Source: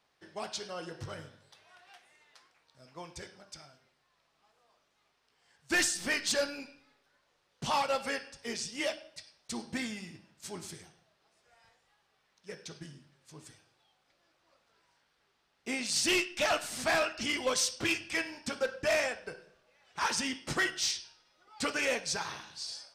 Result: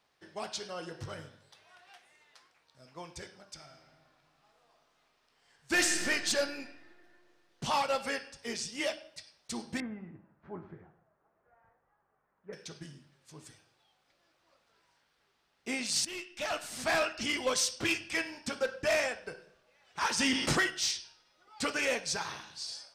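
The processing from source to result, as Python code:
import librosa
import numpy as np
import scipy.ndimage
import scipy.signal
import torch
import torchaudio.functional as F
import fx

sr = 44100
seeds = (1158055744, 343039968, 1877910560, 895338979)

y = fx.reverb_throw(x, sr, start_s=3.54, length_s=2.42, rt60_s=2.5, drr_db=3.5)
y = fx.lowpass(y, sr, hz=1500.0, slope=24, at=(9.8, 12.53))
y = fx.env_flatten(y, sr, amount_pct=70, at=(20.19, 20.6), fade=0.02)
y = fx.edit(y, sr, fx.fade_in_from(start_s=16.05, length_s=0.97, floor_db=-18.0), tone=tone)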